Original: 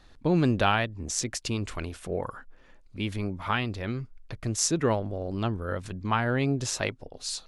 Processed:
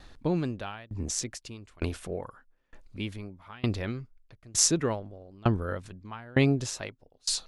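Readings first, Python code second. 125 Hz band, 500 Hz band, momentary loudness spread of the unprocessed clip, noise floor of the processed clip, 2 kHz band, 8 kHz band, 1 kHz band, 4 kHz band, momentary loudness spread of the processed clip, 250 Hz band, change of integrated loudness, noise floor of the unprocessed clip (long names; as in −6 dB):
−2.0 dB, −3.0 dB, 12 LU, −67 dBFS, −6.5 dB, +2.0 dB, −9.0 dB, −0.5 dB, 19 LU, −2.0 dB, −1.5 dB, −55 dBFS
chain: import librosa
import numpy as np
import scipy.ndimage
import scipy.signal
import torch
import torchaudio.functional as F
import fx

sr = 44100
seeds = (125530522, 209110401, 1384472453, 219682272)

y = fx.tremolo_decay(x, sr, direction='decaying', hz=1.1, depth_db=29)
y = y * 10.0 ** (6.5 / 20.0)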